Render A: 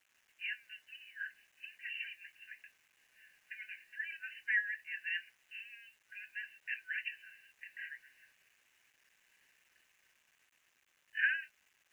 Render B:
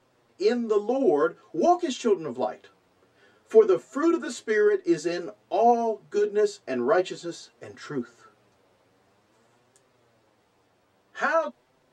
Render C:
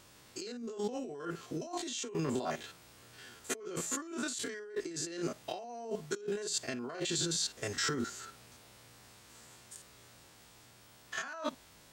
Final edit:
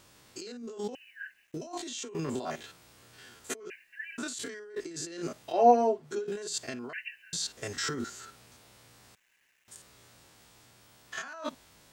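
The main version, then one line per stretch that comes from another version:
C
0.95–1.54 from A
3.7–4.18 from A
5.55–6.14 from B, crossfade 0.24 s
6.93–7.33 from A
9.15–9.68 from A

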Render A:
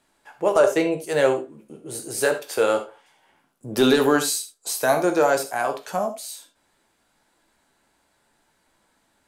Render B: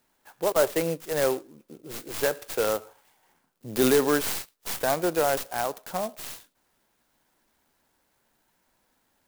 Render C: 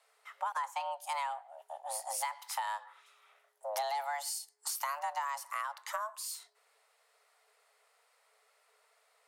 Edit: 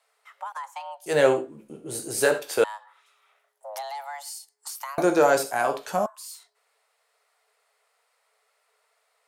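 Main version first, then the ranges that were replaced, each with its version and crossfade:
C
1.06–2.64 from A
4.98–6.06 from A
not used: B

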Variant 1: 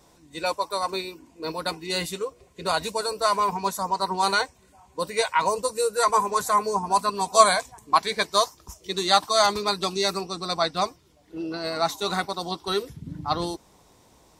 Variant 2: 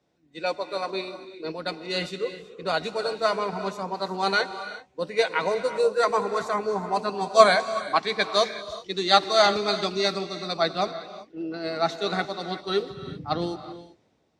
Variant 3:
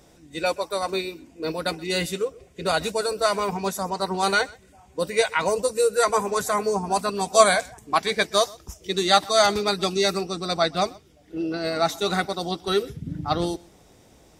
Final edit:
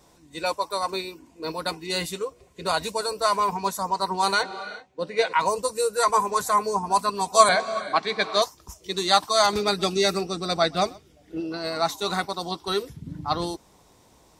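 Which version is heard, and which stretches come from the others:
1
4.43–5.33 from 2
7.49–8.42 from 2
9.53–11.4 from 3

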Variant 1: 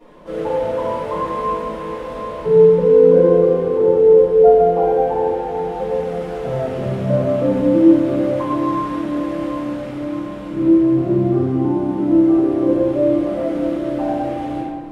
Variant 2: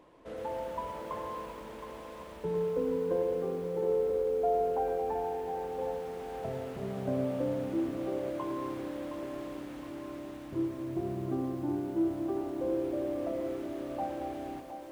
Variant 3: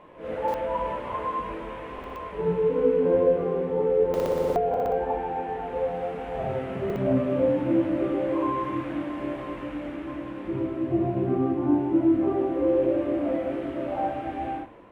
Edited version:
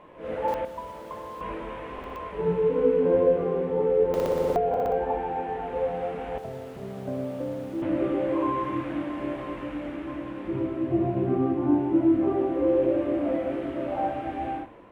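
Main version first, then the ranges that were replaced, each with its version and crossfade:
3
0.65–1.41 from 2
6.38–7.82 from 2
not used: 1

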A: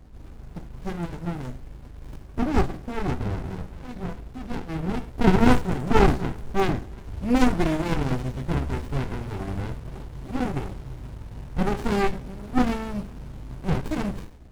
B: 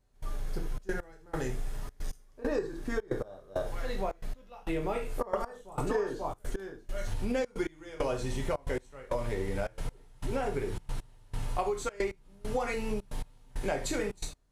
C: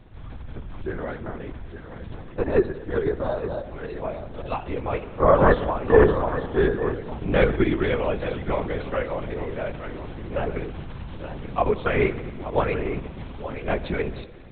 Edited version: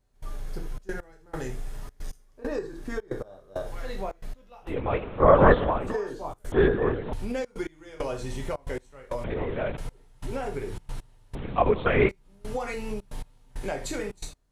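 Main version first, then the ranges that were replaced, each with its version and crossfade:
B
4.7–5.88 from C, crossfade 0.16 s
6.52–7.13 from C
9.24–9.77 from C
11.35–12.09 from C
not used: A

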